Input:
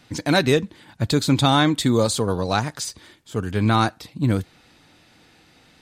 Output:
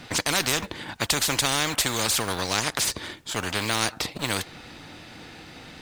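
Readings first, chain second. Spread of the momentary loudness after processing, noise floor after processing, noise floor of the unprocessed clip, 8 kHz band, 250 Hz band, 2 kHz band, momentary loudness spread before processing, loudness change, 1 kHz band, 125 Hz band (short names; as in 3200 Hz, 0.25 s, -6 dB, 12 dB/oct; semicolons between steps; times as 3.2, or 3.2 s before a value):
20 LU, -47 dBFS, -55 dBFS, +6.0 dB, -12.0 dB, +0.5 dB, 13 LU, -3.5 dB, -5.5 dB, -12.5 dB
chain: G.711 law mismatch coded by A; high shelf 7500 Hz -8 dB; spectral compressor 4:1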